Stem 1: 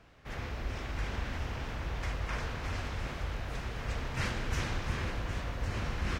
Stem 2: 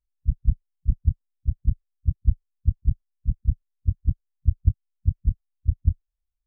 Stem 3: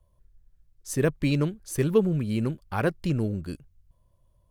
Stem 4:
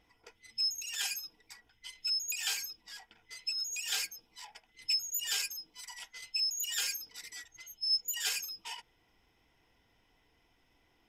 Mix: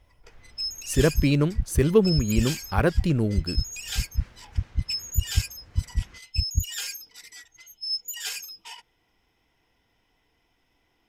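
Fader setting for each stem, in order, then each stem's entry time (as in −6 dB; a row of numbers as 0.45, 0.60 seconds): −18.5, −4.0, +3.0, +1.0 decibels; 0.00, 0.70, 0.00, 0.00 seconds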